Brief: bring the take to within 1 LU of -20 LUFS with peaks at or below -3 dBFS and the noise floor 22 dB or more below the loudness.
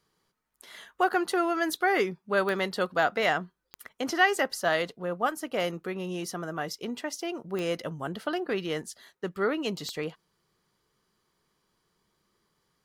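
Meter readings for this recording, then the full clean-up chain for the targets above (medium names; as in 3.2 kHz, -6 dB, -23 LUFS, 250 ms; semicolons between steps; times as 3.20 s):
clicks found 4; loudness -29.5 LUFS; peak level -10.5 dBFS; loudness target -20.0 LUFS
-> de-click; trim +9.5 dB; peak limiter -3 dBFS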